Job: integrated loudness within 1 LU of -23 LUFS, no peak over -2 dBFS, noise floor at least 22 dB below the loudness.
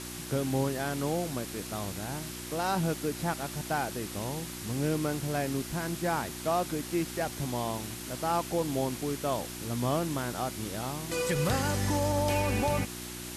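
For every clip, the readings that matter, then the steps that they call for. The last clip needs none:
hum 60 Hz; harmonics up to 360 Hz; hum level -41 dBFS; noise floor -41 dBFS; noise floor target -54 dBFS; loudness -31.5 LUFS; peak -17.0 dBFS; loudness target -23.0 LUFS
-> de-hum 60 Hz, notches 6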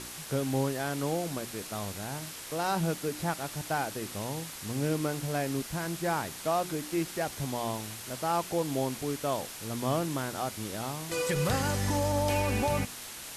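hum none; noise floor -43 dBFS; noise floor target -54 dBFS
-> denoiser 11 dB, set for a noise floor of -43 dBFS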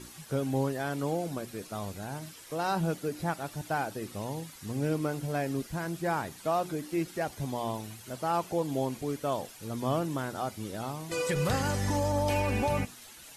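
noise floor -50 dBFS; noise floor target -55 dBFS
-> denoiser 6 dB, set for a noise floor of -50 dBFS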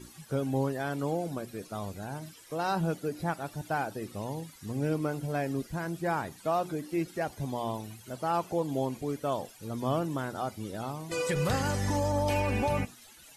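noise floor -54 dBFS; noise floor target -55 dBFS
-> denoiser 6 dB, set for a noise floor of -54 dBFS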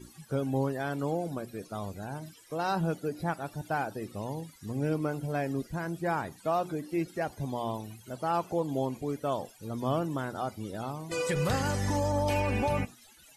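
noise floor -57 dBFS; loudness -32.5 LUFS; peak -17.5 dBFS; loudness target -23.0 LUFS
-> gain +9.5 dB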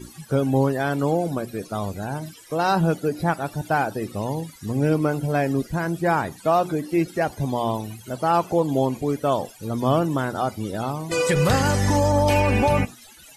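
loudness -23.0 LUFS; peak -8.0 dBFS; noise floor -47 dBFS

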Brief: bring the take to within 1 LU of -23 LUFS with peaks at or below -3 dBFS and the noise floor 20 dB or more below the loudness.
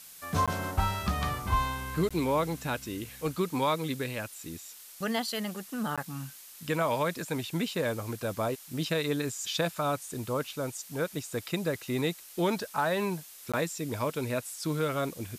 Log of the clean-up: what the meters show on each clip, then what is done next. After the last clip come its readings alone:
dropouts 4; longest dropout 16 ms; noise floor -50 dBFS; noise floor target -52 dBFS; loudness -31.5 LUFS; peak -16.0 dBFS; loudness target -23.0 LUFS
-> interpolate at 0.46/2.09/5.96/13.52, 16 ms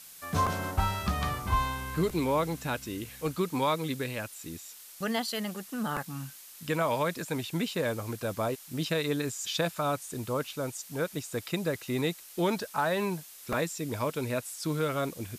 dropouts 0; noise floor -50 dBFS; noise floor target -52 dBFS
-> noise print and reduce 6 dB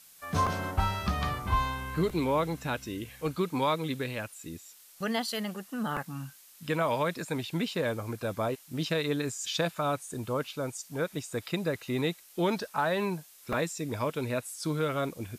noise floor -55 dBFS; loudness -32.0 LUFS; peak -16.0 dBFS; loudness target -23.0 LUFS
-> gain +9 dB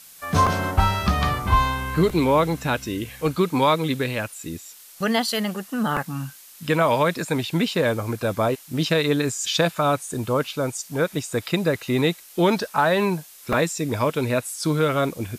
loudness -23.0 LUFS; peak -7.0 dBFS; noise floor -46 dBFS

